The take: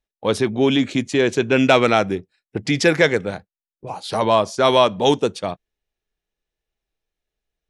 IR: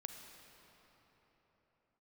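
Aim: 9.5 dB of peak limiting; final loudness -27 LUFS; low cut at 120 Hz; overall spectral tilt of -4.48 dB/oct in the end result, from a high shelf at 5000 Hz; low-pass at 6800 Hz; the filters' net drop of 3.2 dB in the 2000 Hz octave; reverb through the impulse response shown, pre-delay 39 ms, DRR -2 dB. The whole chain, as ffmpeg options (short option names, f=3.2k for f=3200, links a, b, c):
-filter_complex "[0:a]highpass=120,lowpass=6.8k,equalizer=f=2k:t=o:g=-3.5,highshelf=f=5k:g=-4,alimiter=limit=-12dB:level=0:latency=1,asplit=2[a][b];[1:a]atrim=start_sample=2205,adelay=39[c];[b][c]afir=irnorm=-1:irlink=0,volume=5.5dB[d];[a][d]amix=inputs=2:normalize=0,volume=-7.5dB"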